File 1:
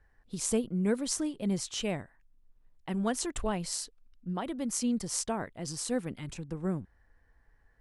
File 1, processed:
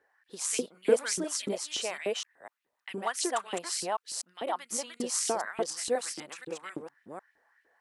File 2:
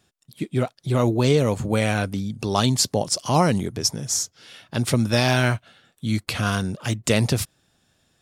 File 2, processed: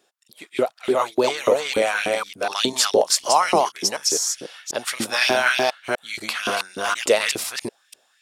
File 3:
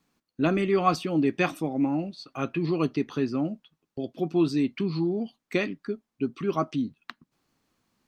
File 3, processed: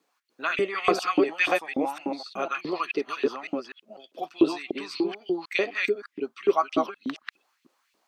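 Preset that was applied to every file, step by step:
delay that plays each chunk backwards 248 ms, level −1 dB
auto-filter high-pass saw up 3.4 Hz 330–3,000 Hz

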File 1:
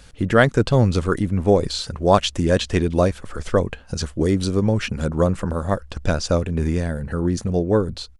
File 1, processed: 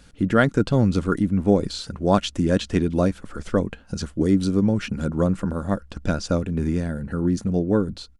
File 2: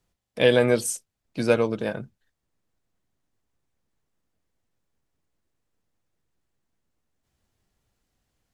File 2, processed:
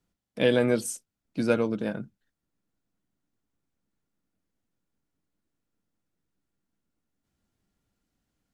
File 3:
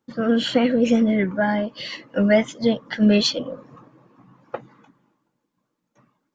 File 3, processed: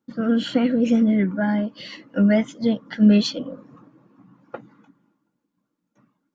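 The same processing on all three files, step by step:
hollow resonant body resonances 200/280/1,400 Hz, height 8 dB, ringing for 45 ms
level −5.5 dB

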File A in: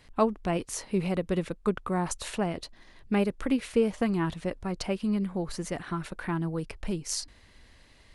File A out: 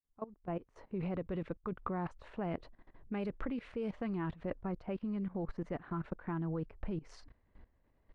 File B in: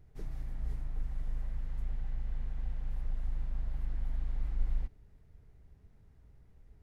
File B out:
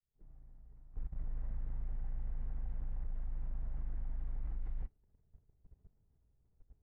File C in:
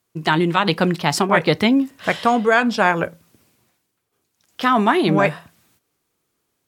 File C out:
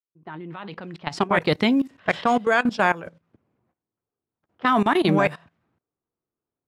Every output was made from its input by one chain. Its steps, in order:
fade in at the beginning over 1.35 s
low-pass that shuts in the quiet parts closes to 1,000 Hz, open at −13 dBFS
output level in coarse steps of 18 dB

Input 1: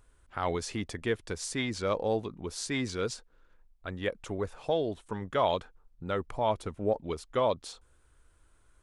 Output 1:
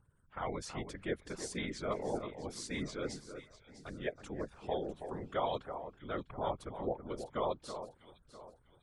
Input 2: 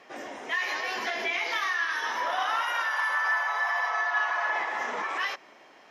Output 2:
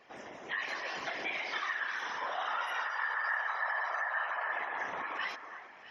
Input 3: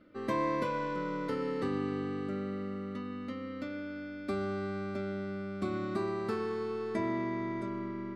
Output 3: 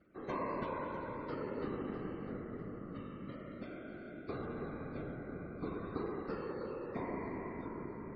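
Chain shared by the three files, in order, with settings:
gate on every frequency bin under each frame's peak −30 dB strong
random phases in short frames
delay that swaps between a low-pass and a high-pass 325 ms, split 1,800 Hz, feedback 57%, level −9 dB
level −7.5 dB

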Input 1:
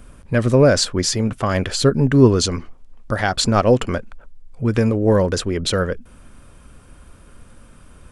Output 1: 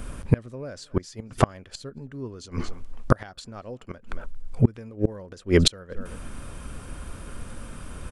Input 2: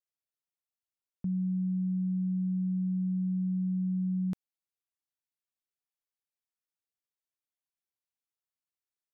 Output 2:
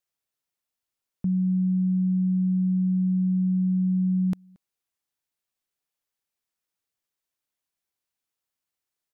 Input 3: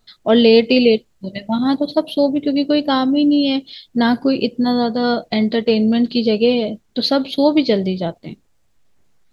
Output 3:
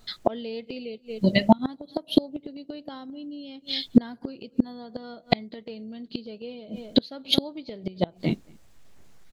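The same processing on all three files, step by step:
slap from a distant wall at 39 metres, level −29 dB
gate with flip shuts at −11 dBFS, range −31 dB
level +7 dB

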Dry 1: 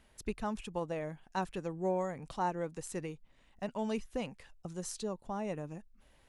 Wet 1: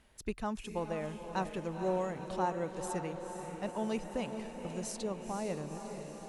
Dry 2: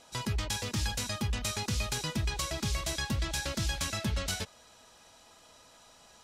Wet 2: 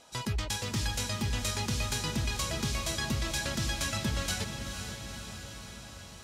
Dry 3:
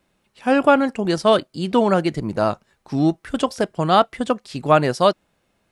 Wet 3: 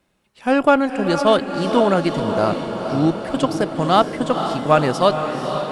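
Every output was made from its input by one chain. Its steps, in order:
harmonic generator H 8 −35 dB, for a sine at −1 dBFS
feedback delay with all-pass diffusion 494 ms, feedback 67%, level −7.5 dB

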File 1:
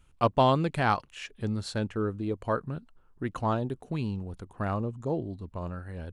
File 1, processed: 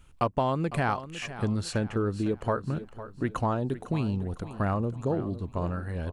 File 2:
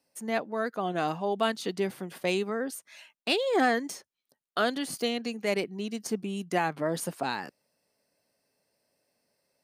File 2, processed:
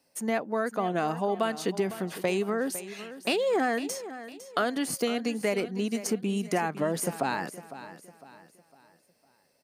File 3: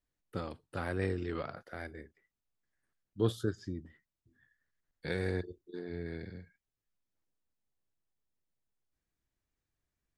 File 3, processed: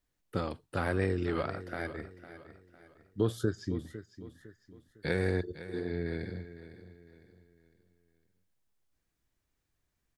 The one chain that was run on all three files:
dynamic equaliser 3,700 Hz, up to −7 dB, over −50 dBFS, Q 1.9
downward compressor 5 to 1, threshold −29 dBFS
on a send: repeating echo 505 ms, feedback 39%, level −14 dB
on the sum: level +5.5 dB

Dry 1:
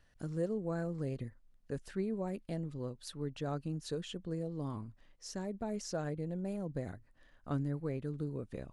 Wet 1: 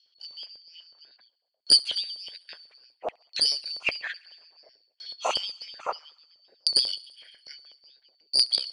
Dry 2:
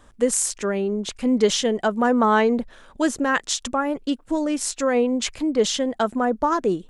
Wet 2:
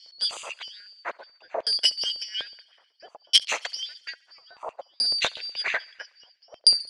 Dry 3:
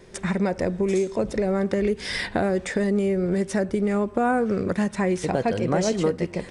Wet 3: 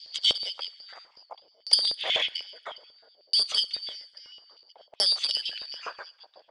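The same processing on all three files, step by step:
band-splitting scrambler in four parts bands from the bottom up 4321
camcorder AGC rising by 11 dB per second
harmonic and percussive parts rebalanced percussive +9 dB
auto-filter low-pass saw down 0.6 Hz 570–5,200 Hz
frequency shifter −25 Hz
harmonic generator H 2 −6 dB, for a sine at 5.5 dBFS
auto-filter high-pass square 8.1 Hz 550–2,900 Hz
on a send: feedback echo with a high-pass in the loop 69 ms, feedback 74%, high-pass 1,100 Hz, level −24 dB
on the sum: level −12.5 dB

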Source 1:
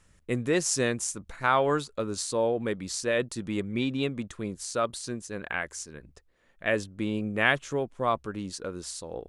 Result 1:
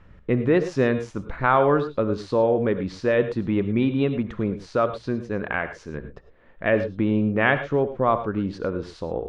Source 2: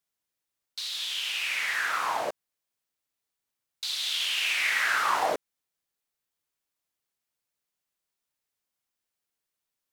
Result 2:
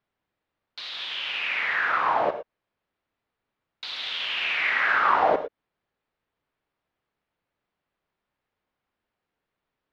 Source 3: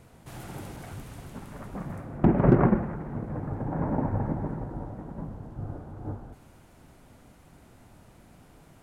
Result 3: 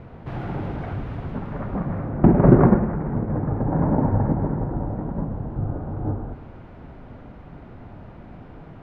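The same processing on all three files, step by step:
high-shelf EQ 2,700 Hz −8 dB
in parallel at +2.5 dB: downward compressor, threshold −38 dBFS
on the sum: high-frequency loss of the air 310 metres
reverb whose tail is shaped and stops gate 130 ms rising, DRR 10.5 dB
level +5.5 dB

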